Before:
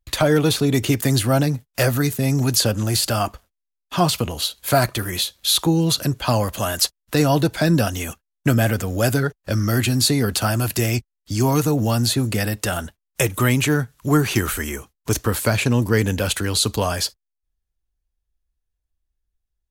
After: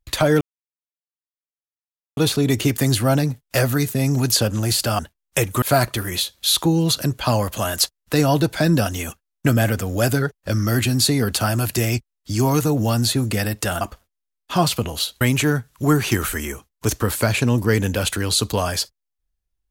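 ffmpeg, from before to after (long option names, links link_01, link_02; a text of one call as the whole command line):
ffmpeg -i in.wav -filter_complex "[0:a]asplit=6[link_01][link_02][link_03][link_04][link_05][link_06];[link_01]atrim=end=0.41,asetpts=PTS-STARTPTS,afade=type=out:start_time=0.406:duration=0.004:curve=hsin,apad=pad_dur=1.76[link_07];[link_02]atrim=start=0.41:end=3.232,asetpts=PTS-STARTPTS,afade=type=in:duration=0.004:curve=hsin[link_08];[link_03]atrim=start=12.818:end=13.452[link_09];[link_04]atrim=start=4.628:end=12.822[link_10];[link_05]atrim=start=3.228:end=4.632[link_11];[link_06]atrim=start=13.448[link_12];[link_07][link_08]concat=n=2:v=0:a=1[link_13];[link_13][link_09]acrossfade=duration=0.004:curve1=hsin:curve2=hsin[link_14];[link_14][link_10]acrossfade=duration=0.004:curve1=hsin:curve2=hsin[link_15];[link_15][link_11]acrossfade=duration=0.004:curve1=hsin:curve2=hsin[link_16];[link_16][link_12]acrossfade=duration=0.004:curve1=hsin:curve2=hsin" out.wav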